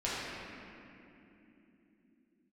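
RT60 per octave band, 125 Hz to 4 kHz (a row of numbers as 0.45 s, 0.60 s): 4.1 s, no reading, 3.5 s, 2.5 s, 2.7 s, 1.9 s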